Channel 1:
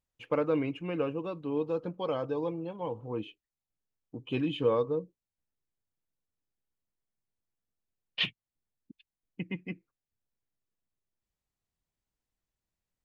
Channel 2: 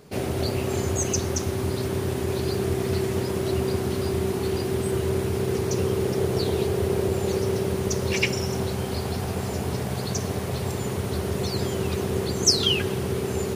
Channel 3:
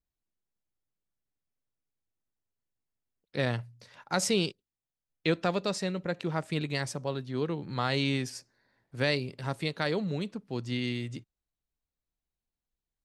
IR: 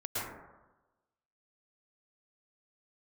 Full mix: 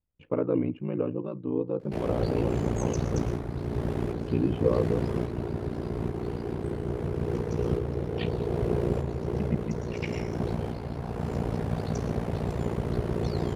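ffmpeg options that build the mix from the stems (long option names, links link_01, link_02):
-filter_complex "[0:a]lowshelf=frequency=470:gain=11,volume=-1dB[link_01];[1:a]adelay=1800,volume=-1dB,asplit=2[link_02][link_03];[link_03]volume=-10dB[link_04];[2:a]highpass=1200,acompressor=threshold=-34dB:ratio=6,volume=-14.5dB,asplit=2[link_05][link_06];[link_06]apad=whole_len=677292[link_07];[link_02][link_07]sidechaincompress=threshold=-59dB:ratio=8:attack=21:release=412[link_08];[3:a]atrim=start_sample=2205[link_09];[link_04][link_09]afir=irnorm=-1:irlink=0[link_10];[link_01][link_08][link_05][link_10]amix=inputs=4:normalize=0,lowpass=frequency=1300:poles=1,aeval=exprs='val(0)*sin(2*PI*29*n/s)':channel_layout=same"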